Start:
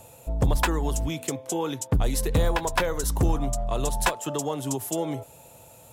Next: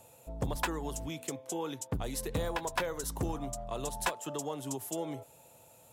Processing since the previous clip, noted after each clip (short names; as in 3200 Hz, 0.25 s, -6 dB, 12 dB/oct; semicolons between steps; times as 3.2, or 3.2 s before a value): low shelf 75 Hz -11.5 dB; gain -8 dB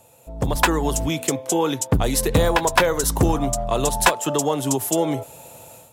AGC gain up to 12 dB; gain +4 dB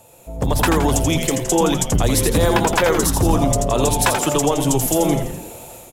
limiter -12 dBFS, peak gain reduction 8 dB; on a send: frequency-shifting echo 84 ms, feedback 53%, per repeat -150 Hz, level -5.5 dB; on the sum: gain +4 dB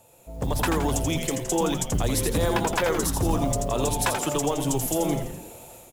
modulation noise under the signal 29 dB; gain -7.5 dB